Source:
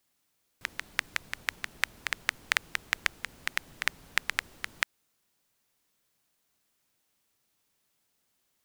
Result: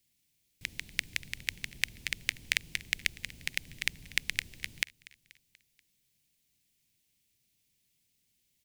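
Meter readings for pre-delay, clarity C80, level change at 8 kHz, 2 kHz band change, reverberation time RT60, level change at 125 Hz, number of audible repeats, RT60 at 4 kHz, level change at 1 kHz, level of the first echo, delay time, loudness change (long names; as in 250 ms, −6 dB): no reverb audible, no reverb audible, +0.5 dB, −3.0 dB, no reverb audible, +5.0 dB, 3, no reverb audible, −16.0 dB, −21.5 dB, 241 ms, −1.5 dB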